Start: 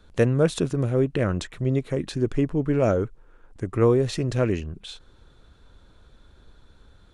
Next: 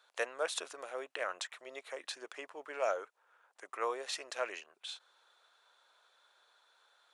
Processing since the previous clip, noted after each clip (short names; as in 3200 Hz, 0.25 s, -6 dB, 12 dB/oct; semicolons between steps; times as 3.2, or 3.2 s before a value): HPF 680 Hz 24 dB/oct; gain -4.5 dB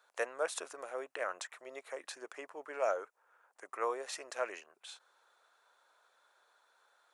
bell 3500 Hz -8.5 dB 1.1 oct; gain +1 dB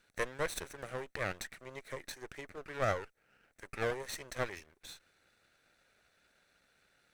minimum comb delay 0.49 ms; gain +1.5 dB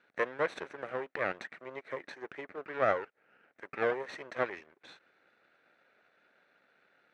BPF 240–2200 Hz; gain +5 dB